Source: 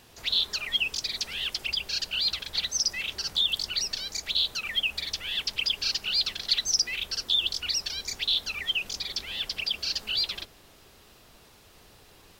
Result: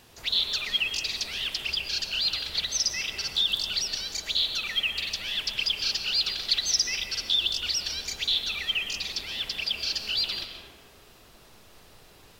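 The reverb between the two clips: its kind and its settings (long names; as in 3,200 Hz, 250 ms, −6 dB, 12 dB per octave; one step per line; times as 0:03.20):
comb and all-pass reverb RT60 2.1 s, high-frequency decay 0.4×, pre-delay 85 ms, DRR 5 dB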